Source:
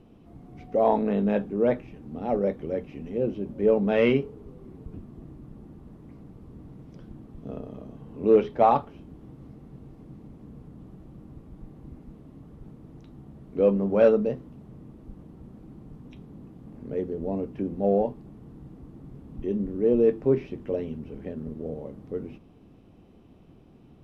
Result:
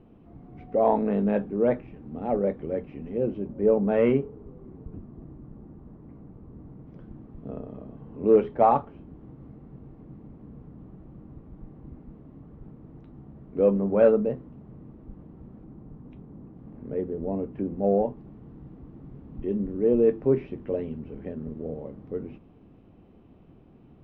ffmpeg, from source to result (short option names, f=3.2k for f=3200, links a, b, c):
-af "asetnsamples=n=441:p=0,asendcmd='3.47 lowpass f 1500;6.87 lowpass f 2000;15.64 lowpass f 1500;16.57 lowpass f 2000;18.17 lowpass f 2600',lowpass=2.3k"